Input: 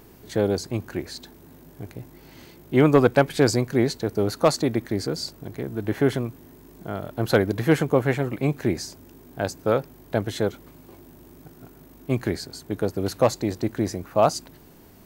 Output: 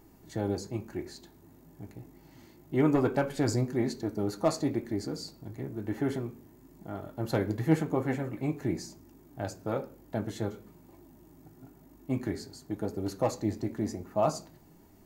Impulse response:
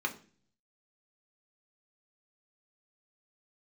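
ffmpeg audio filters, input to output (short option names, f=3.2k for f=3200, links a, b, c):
-filter_complex "[0:a]flanger=delay=2.2:depth=7.4:regen=65:speed=1:shape=triangular,asplit=2[a][b];[1:a]atrim=start_sample=2205[c];[b][c]afir=irnorm=-1:irlink=0,volume=-8.5dB[d];[a][d]amix=inputs=2:normalize=0,volume=-4.5dB"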